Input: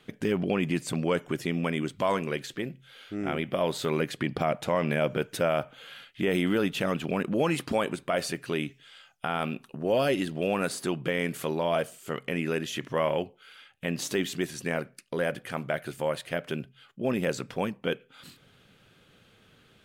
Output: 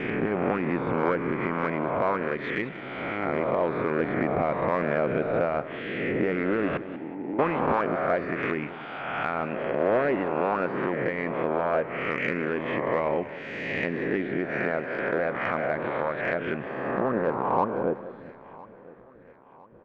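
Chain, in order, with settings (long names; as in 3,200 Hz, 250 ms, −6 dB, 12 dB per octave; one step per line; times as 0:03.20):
peak hold with a rise ahead of every peak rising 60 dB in 1.74 s
treble cut that deepens with the level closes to 1,200 Hz, closed at −22.5 dBFS
noise gate with hold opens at −45 dBFS
low-pass filter sweep 2,200 Hz → 470 Hz, 0:16.36–0:18.95
harmonic and percussive parts rebalanced harmonic −9 dB
in parallel at −6 dB: soft clipping −22.5 dBFS, distortion −14 dB
0:06.77–0:07.39: on the sum: formant resonators in series u
on a send: repeating echo 1,008 ms, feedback 48%, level −21.5 dB
on the sum: feedback echo with a swinging delay time 187 ms, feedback 35%, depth 89 cents, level −14.5 dB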